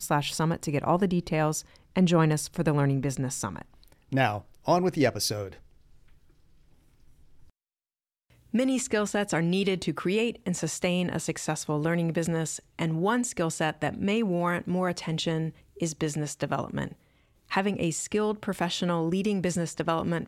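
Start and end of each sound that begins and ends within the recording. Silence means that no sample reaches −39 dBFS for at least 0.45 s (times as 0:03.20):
0:08.54–0:16.93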